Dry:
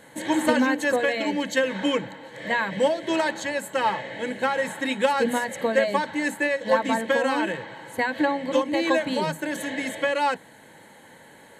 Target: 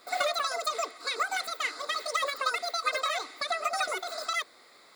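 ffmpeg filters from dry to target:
-af "asetrate=103194,aresample=44100,volume=0.447"

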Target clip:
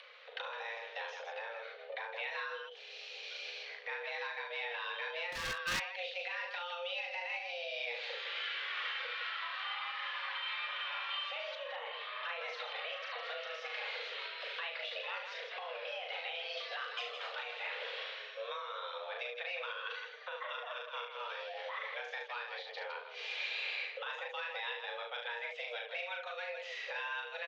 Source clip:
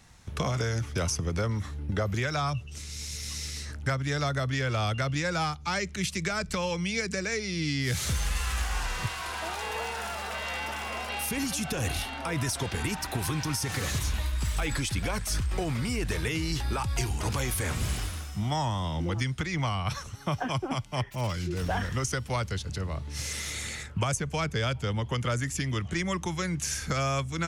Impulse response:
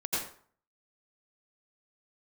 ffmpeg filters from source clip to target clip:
-filter_complex "[0:a]highpass=f=160:t=q:w=0.5412,highpass=f=160:t=q:w=1.307,lowpass=f=3400:t=q:w=0.5176,lowpass=f=3400:t=q:w=0.7071,lowpass=f=3400:t=q:w=1.932,afreqshift=350,flanger=delay=1.7:depth=2.8:regen=-48:speed=1.4:shape=triangular,aecho=1:1:37.9|72.89|160.3:0.708|0.447|0.398,asettb=1/sr,asplit=3[s0][s1][s2];[s0]atrim=end=5.324[s3];[s1]atrim=start=5.32:end=5.8,asetpts=PTS-STARTPTS,afade=t=in:d=0.004:c=qsin,afade=t=out:st=0.476:d=0.004:c=qsin,aeval=exprs='0.0355*(abs(mod(val(0)/0.0355+3,4)-2)-1)':c=same[s4];[s2]atrim=start=5.796[s5];[s3][s4]acrossfade=d=0.004:c1=hsin:c2=qsin[s6];[s6][s5]acrossfade=d=0.004:c1=qsin:c2=hsin,asettb=1/sr,asplit=3[s7][s8][s9];[s7]atrim=end=11.554[s10];[s8]atrim=start=11.55:end=12.23,asetpts=PTS-STARTPTS,afade=t=in:d=0.004:c=qsin,afade=t=out:st=0.676:d=0.004:c=qsin,acrossover=split=2700[s11][s12];[s12]acompressor=threshold=0.00141:ratio=4:attack=1:release=60[s13];[s11][s13]amix=inputs=2:normalize=0[s14];[s9]atrim=start=12.226[s15];[s10][s14]acrossfade=d=0.004:c1=hsin:c2=qsin[s16];[s16][s15]acrossfade=d=0.004:c1=qsin:c2=hsin,asettb=1/sr,asplit=3[s17][s18][s19];[s17]atrim=end=16.574[s20];[s18]atrim=start=16.57:end=17.32,asetpts=PTS-STARTPTS,afade=t=in:d=0.004:c=qsin,afade=t=out:st=0.746:d=0.004:c=qsin,aemphasis=mode=production:type=50fm[s21];[s19]atrim=start=17.316[s22];[s20][s21]acrossfade=d=0.004:c1=hsin:c2=qsin[s23];[s23][s22]acrossfade=d=0.004:c1=qsin:c2=hsin,alimiter=level_in=2.11:limit=0.0631:level=0:latency=1:release=453,volume=0.473,equalizer=f=700:t=o:w=1.9:g=-10.5,acompressor=mode=upward:threshold=0.002:ratio=2.5,volume=1.78"

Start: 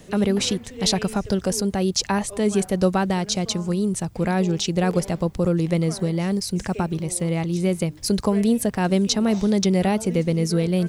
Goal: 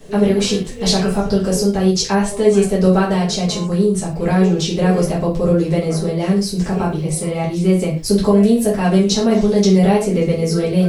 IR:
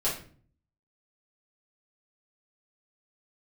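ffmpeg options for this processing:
-filter_complex "[1:a]atrim=start_sample=2205,atrim=end_sample=6615[s0];[0:a][s0]afir=irnorm=-1:irlink=0,volume=0.668"

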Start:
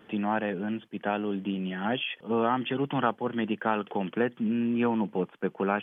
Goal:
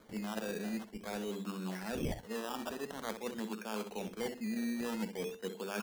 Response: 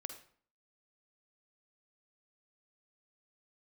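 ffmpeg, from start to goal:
-filter_complex "[0:a]bandreject=f=50:t=h:w=6,bandreject=f=100:t=h:w=6,bandreject=f=150:t=h:w=6,bandreject=f=200:t=h:w=6,bandreject=f=250:t=h:w=6,bandreject=f=300:t=h:w=6,bandreject=f=350:t=h:w=6,bandreject=f=400:t=h:w=6,bandreject=f=450:t=h:w=6,areverse,acompressor=threshold=0.0178:ratio=6,areverse,crystalizer=i=7:c=0,highpass=f=200:w=0.5412,highpass=f=200:w=1.3066,equalizer=f=210:t=q:w=4:g=6,equalizer=f=300:t=q:w=4:g=-7,equalizer=f=450:t=q:w=4:g=4,equalizer=f=800:t=q:w=4:g=-5,equalizer=f=1300:t=q:w=4:g=-6,equalizer=f=2000:t=q:w=4:g=-9,lowpass=f=2800:w=0.5412,lowpass=f=2800:w=1.3066,asplit=2[s0][s1];[s1]aecho=0:1:64|128|192:0.335|0.0703|0.0148[s2];[s0][s2]amix=inputs=2:normalize=0,acrusher=samples=16:mix=1:aa=0.000001:lfo=1:lforange=9.6:lforate=0.48,volume=0.75"

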